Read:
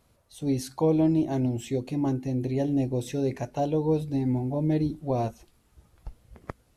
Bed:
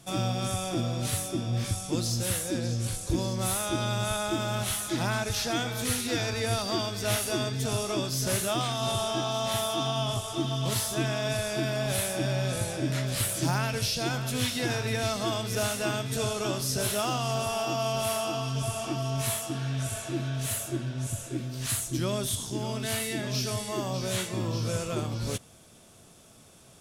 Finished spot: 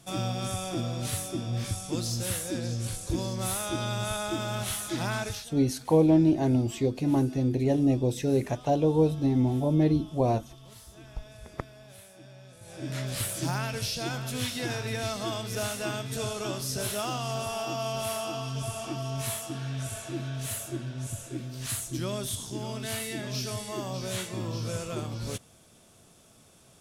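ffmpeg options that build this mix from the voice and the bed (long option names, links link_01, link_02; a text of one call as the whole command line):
ffmpeg -i stem1.wav -i stem2.wav -filter_complex "[0:a]adelay=5100,volume=2dB[link_01];[1:a]volume=16.5dB,afade=type=out:start_time=5.26:duration=0.2:silence=0.105925,afade=type=in:start_time=12.61:duration=0.41:silence=0.11885[link_02];[link_01][link_02]amix=inputs=2:normalize=0" out.wav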